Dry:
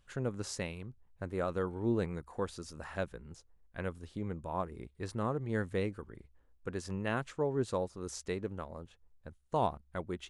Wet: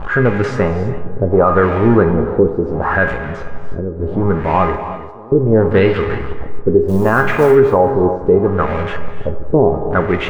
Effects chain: zero-crossing step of -39.5 dBFS; 4.76–5.32 pre-emphasis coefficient 0.97; LFO low-pass sine 0.71 Hz 370–2200 Hz; dynamic EQ 4100 Hz, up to -4 dB, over -58 dBFS, Q 1.2; 6.88–7.55 short-mantissa float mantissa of 4-bit; de-hum 69.81 Hz, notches 37; 5.72–6 spectral gain 2600–5400 Hz +9 dB; band-limited delay 92 ms, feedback 79%, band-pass 710 Hz, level -17 dB; non-linear reverb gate 0.36 s rising, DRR 12 dB; 3.12–4 compressor 3:1, threshold -41 dBFS, peak gain reduction 9 dB; resonator 410 Hz, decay 0.41 s, harmonics all, mix 80%; maximiser +34 dB; gain -1 dB

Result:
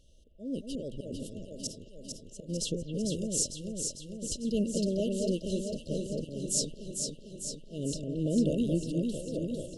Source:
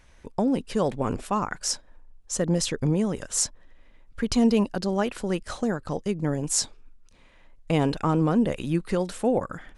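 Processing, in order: auto swell 0.28 s; echo with dull and thin repeats by turns 0.225 s, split 2400 Hz, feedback 80%, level -3 dB; FFT band-reject 660–2700 Hz; gain -5 dB

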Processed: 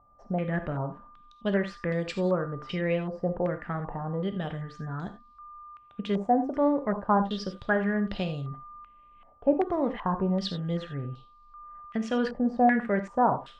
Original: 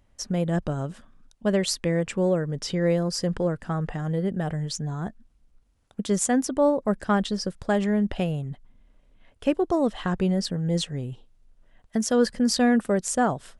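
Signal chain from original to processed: whine 1200 Hz -51 dBFS; non-linear reverb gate 0.11 s flat, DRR 8 dB; stepped low-pass 2.6 Hz 760–4400 Hz; gain -5.5 dB

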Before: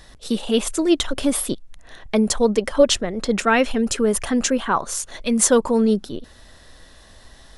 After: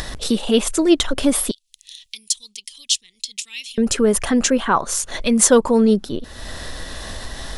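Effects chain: upward compressor, threshold -20 dBFS; 1.51–3.78 inverse Chebyshev high-pass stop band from 1600 Hz, stop band 40 dB; gain +3 dB

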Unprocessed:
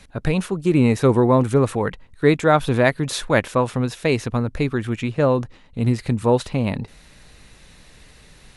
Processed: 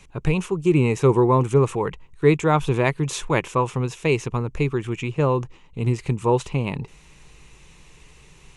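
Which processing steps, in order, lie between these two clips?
ripple EQ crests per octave 0.72, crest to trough 9 dB; gain -3 dB

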